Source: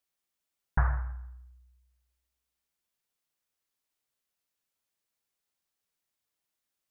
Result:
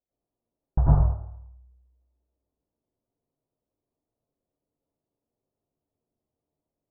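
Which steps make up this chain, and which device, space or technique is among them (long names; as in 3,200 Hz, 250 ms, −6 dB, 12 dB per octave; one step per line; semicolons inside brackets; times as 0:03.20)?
next room (low-pass filter 680 Hz 24 dB per octave; convolution reverb RT60 0.50 s, pre-delay 87 ms, DRR −8.5 dB)
level +3.5 dB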